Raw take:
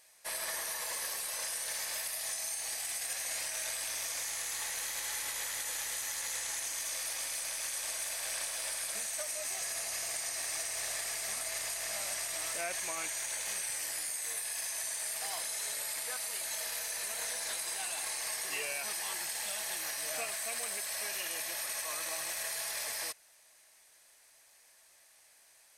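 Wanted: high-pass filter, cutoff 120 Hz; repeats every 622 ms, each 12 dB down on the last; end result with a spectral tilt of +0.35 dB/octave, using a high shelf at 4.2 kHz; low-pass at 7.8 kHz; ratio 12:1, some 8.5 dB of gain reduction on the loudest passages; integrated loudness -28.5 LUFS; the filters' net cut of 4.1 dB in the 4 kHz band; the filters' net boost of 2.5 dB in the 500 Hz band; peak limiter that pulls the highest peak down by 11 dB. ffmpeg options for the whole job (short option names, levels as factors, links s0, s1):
-af "highpass=120,lowpass=7800,equalizer=f=500:t=o:g=3.5,equalizer=f=4000:t=o:g=-9,highshelf=f=4200:g=6,acompressor=threshold=0.00794:ratio=12,alimiter=level_in=8.41:limit=0.0631:level=0:latency=1,volume=0.119,aecho=1:1:622|1244|1866:0.251|0.0628|0.0157,volume=10.6"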